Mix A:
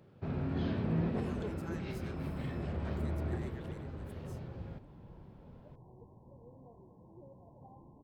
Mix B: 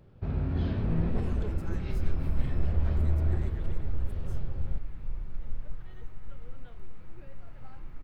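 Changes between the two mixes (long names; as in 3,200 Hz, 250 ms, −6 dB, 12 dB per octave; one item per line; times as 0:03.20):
second sound: remove linear-phase brick-wall low-pass 1,100 Hz
master: remove high-pass filter 140 Hz 12 dB per octave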